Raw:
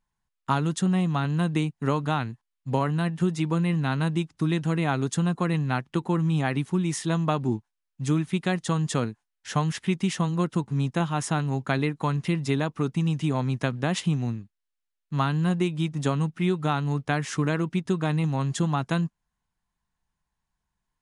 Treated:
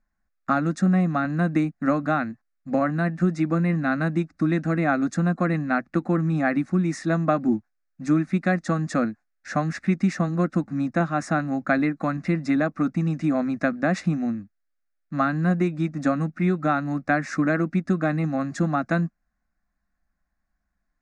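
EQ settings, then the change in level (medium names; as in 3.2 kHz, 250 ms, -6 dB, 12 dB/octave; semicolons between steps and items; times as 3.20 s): distance through air 140 m; static phaser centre 630 Hz, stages 8; +7.5 dB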